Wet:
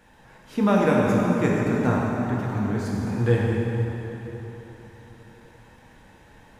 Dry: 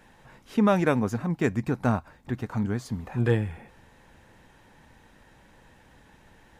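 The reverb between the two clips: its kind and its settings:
dense smooth reverb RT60 3.9 s, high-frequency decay 0.75×, DRR −4 dB
level −1.5 dB

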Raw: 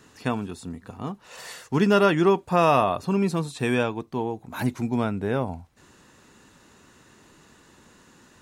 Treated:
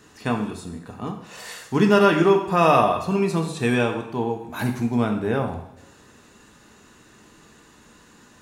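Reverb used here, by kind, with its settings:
coupled-rooms reverb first 0.7 s, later 3 s, from −26 dB, DRR 3 dB
level +1 dB

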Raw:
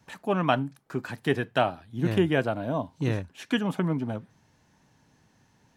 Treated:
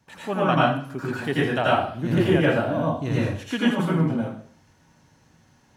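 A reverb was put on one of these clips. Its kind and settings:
dense smooth reverb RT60 0.54 s, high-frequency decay 0.95×, pre-delay 75 ms, DRR −7 dB
level −2.5 dB

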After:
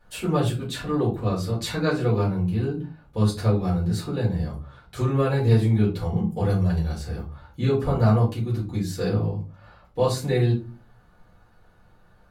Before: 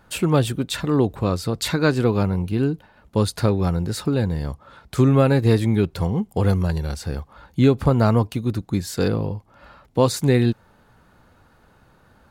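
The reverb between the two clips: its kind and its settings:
rectangular room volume 140 cubic metres, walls furnished, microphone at 4.1 metres
level −14 dB

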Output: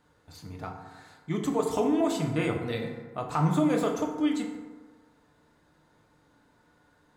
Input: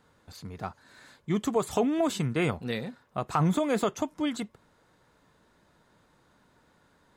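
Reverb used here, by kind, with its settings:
feedback delay network reverb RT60 1.4 s, low-frequency decay 0.9×, high-frequency decay 0.45×, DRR 1 dB
level −3.5 dB

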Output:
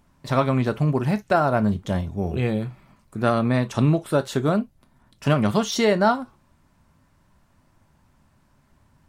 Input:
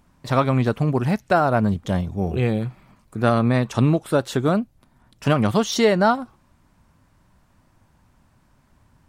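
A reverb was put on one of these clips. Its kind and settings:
reverb whose tail is shaped and stops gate 80 ms falling, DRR 10 dB
level −2 dB

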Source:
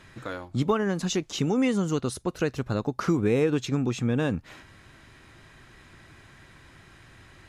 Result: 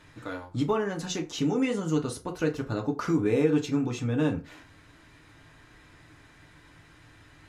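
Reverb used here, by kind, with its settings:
feedback delay network reverb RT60 0.33 s, low-frequency decay 0.8×, high-frequency decay 0.65×, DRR 1.5 dB
level −4.5 dB

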